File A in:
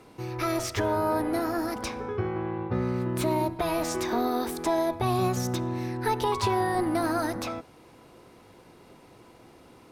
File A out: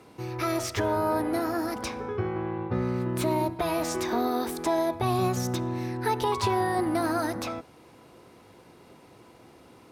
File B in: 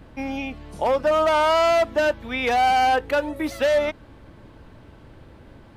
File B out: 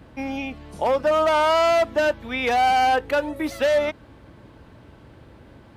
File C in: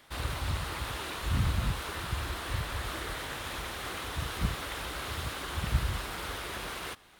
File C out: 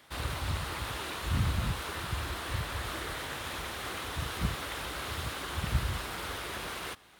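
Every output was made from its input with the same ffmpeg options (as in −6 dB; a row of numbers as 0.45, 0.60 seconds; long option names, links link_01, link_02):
-af "highpass=52"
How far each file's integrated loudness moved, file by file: 0.0, 0.0, −0.5 LU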